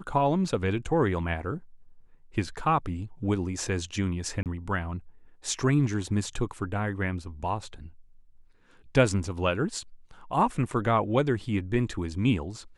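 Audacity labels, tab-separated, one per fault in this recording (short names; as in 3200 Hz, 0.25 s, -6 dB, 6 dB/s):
4.430000	4.460000	gap 28 ms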